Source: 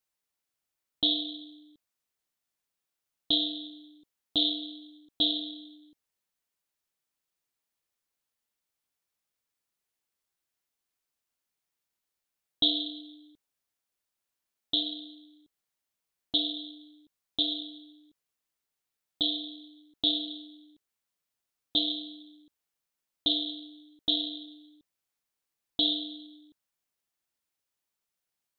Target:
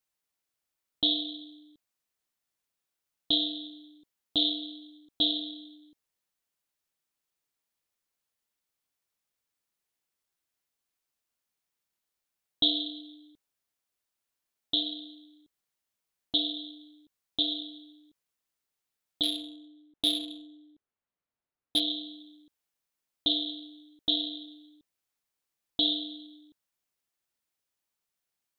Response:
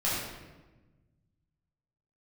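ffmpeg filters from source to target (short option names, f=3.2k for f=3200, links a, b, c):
-filter_complex "[0:a]asettb=1/sr,asplit=3[a][b][c];[a]atrim=end=19.234[d];[b]atrim=start=19.23:end=21.8,asetpts=PTS-STARTPTS,afade=t=in:d=0.004:c=qsin,afade=t=out:st=2.566:d=0.004:c=qsin,adynamicsmooth=sensitivity=5.5:basefreq=2.2k[e];[c]atrim=start=21.796[f];[d][e]acrossfade=d=0.004:c1=hsin:c2=qsin[g];[g][f]acrossfade=d=0.004:c1=qsin:c2=hsin"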